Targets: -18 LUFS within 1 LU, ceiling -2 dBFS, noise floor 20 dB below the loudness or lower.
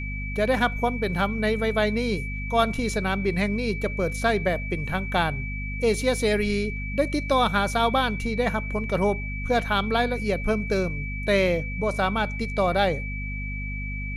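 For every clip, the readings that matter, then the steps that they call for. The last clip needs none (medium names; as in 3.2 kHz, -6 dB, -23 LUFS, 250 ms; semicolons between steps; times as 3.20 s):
hum 50 Hz; highest harmonic 250 Hz; hum level -29 dBFS; steady tone 2.3 kHz; tone level -34 dBFS; loudness -25.0 LUFS; peak level -8.5 dBFS; loudness target -18.0 LUFS
-> hum notches 50/100/150/200/250 Hz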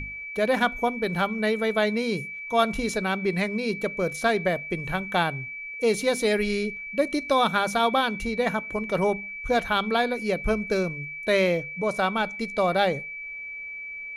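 hum not found; steady tone 2.3 kHz; tone level -34 dBFS
-> band-stop 2.3 kHz, Q 30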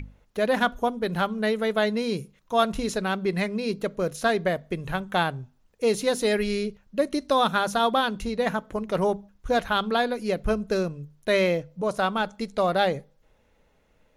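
steady tone not found; loudness -26.0 LUFS; peak level -8.0 dBFS; loudness target -18.0 LUFS
-> trim +8 dB; peak limiter -2 dBFS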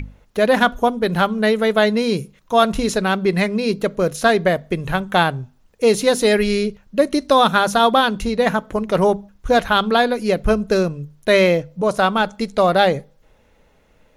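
loudness -18.0 LUFS; peak level -2.0 dBFS; noise floor -56 dBFS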